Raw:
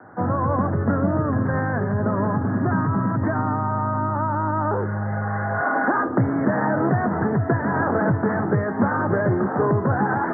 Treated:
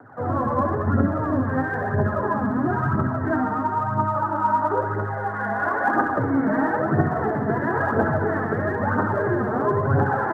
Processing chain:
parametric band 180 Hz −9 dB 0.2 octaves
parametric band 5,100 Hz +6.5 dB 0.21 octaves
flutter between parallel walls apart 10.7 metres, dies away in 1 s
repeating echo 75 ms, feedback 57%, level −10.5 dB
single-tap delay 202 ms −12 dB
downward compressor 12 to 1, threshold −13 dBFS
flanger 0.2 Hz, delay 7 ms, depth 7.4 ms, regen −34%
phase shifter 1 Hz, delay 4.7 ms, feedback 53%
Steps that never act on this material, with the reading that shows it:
parametric band 5,100 Hz: nothing at its input above 1,800 Hz

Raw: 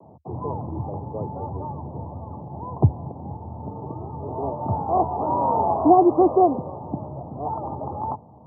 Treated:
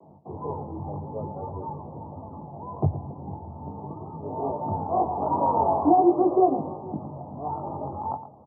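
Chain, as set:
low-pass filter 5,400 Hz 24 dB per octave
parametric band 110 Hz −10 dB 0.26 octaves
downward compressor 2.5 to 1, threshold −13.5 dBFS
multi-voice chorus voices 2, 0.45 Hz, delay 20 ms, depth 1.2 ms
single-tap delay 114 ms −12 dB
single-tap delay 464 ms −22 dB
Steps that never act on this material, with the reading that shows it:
low-pass filter 5,400 Hz: nothing at its input above 1,200 Hz

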